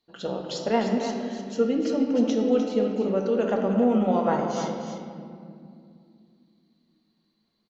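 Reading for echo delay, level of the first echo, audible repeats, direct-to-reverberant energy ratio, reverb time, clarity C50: 0.302 s, -8.5 dB, 1, 0.0 dB, 2.4 s, 2.0 dB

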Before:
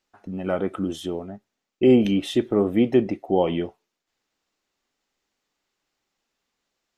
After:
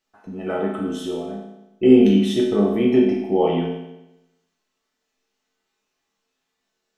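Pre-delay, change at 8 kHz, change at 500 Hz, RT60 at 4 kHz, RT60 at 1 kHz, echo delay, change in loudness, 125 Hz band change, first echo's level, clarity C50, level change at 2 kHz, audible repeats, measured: 5 ms, n/a, +3.0 dB, 0.85 s, 0.95 s, none, +3.5 dB, +2.5 dB, none, 2.5 dB, +1.5 dB, none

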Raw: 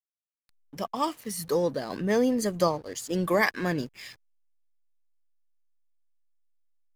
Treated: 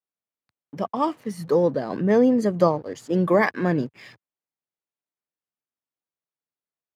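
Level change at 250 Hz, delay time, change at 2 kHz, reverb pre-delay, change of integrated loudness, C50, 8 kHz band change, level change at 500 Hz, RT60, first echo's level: +6.5 dB, none, +1.0 dB, none, +5.5 dB, none, n/a, +6.0 dB, none, none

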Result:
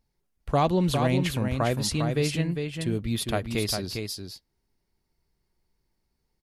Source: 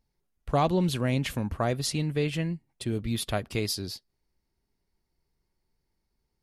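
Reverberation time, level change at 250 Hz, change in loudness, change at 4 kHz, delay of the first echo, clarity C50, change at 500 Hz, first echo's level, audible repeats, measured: none, +2.5 dB, +2.5 dB, +2.5 dB, 0.403 s, none, +2.5 dB, -5.5 dB, 1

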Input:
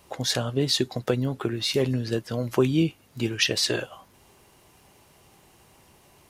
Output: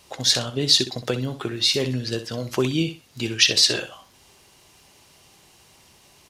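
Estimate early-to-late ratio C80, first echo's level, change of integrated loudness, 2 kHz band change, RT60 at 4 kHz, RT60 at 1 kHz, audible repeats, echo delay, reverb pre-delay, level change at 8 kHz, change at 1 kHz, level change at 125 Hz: none, -11.5 dB, +4.5 dB, +4.0 dB, none, none, 2, 63 ms, none, +7.0 dB, 0.0 dB, -1.0 dB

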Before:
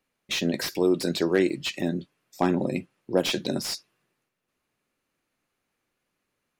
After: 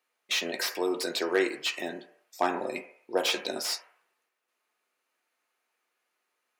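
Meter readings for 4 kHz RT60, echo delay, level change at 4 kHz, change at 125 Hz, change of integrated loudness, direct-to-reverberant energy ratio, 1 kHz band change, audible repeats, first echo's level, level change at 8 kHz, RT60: 0.65 s, none, 0.0 dB, -21.5 dB, -3.5 dB, 8.0 dB, +1.5 dB, none, none, 0.0 dB, 0.60 s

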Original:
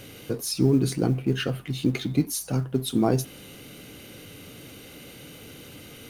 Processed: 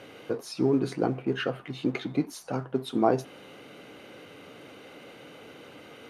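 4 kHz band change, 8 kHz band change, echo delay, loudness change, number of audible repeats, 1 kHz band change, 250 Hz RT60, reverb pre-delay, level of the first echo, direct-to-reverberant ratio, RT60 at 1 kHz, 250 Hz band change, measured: -7.0 dB, -14.0 dB, none, -3.5 dB, none, +3.5 dB, none, none, none, none, none, -4.0 dB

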